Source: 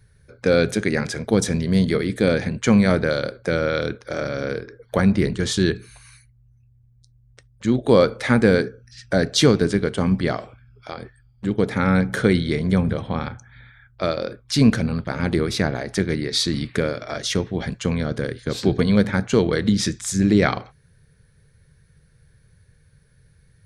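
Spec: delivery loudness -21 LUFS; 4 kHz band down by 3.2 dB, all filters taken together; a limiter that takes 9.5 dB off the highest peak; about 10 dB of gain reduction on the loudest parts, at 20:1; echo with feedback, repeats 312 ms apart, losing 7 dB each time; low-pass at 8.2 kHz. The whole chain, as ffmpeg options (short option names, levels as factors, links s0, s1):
-af "lowpass=8200,equalizer=f=4000:t=o:g=-3.5,acompressor=threshold=0.1:ratio=20,alimiter=limit=0.126:level=0:latency=1,aecho=1:1:312|624|936|1248|1560:0.447|0.201|0.0905|0.0407|0.0183,volume=2.66"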